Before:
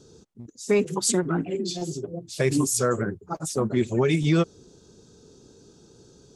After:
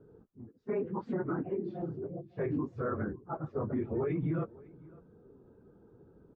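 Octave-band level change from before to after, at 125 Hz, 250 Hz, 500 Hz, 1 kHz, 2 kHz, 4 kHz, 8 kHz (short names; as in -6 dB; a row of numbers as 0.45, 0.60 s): -10.0 dB, -9.5 dB, -10.0 dB, -8.5 dB, -14.5 dB, under -35 dB, under -40 dB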